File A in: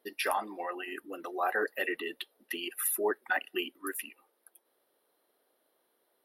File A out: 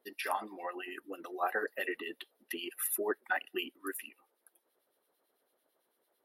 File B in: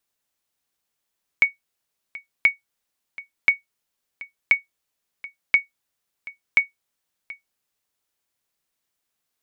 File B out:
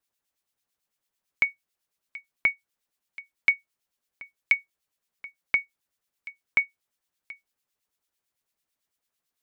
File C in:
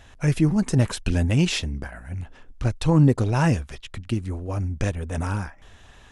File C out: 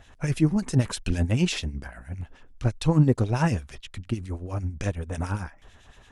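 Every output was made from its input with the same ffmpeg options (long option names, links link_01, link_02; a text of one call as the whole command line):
ffmpeg -i in.wav -filter_complex "[0:a]acrossover=split=1900[link_01][link_02];[link_01]aeval=exprs='val(0)*(1-0.7/2+0.7/2*cos(2*PI*9*n/s))':channel_layout=same[link_03];[link_02]aeval=exprs='val(0)*(1-0.7/2-0.7/2*cos(2*PI*9*n/s))':channel_layout=same[link_04];[link_03][link_04]amix=inputs=2:normalize=0" out.wav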